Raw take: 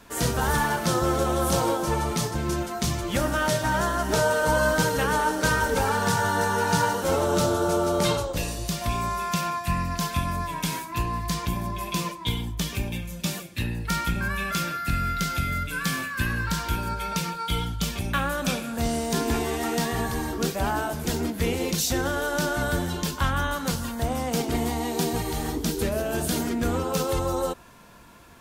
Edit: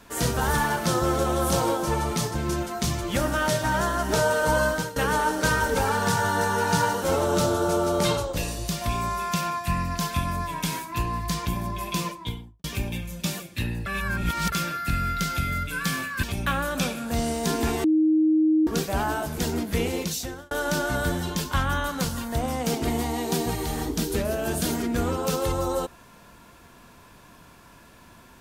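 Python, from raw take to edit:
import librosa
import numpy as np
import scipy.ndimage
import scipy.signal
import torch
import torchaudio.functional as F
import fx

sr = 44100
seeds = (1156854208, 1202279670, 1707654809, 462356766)

y = fx.studio_fade_out(x, sr, start_s=12.05, length_s=0.59)
y = fx.edit(y, sr, fx.fade_out_to(start_s=4.61, length_s=0.35, floor_db=-17.5),
    fx.reverse_span(start_s=13.86, length_s=0.66),
    fx.cut(start_s=16.23, length_s=1.67),
    fx.bleep(start_s=19.51, length_s=0.83, hz=313.0, db=-16.5),
    fx.fade_out_span(start_s=21.56, length_s=0.62), tone=tone)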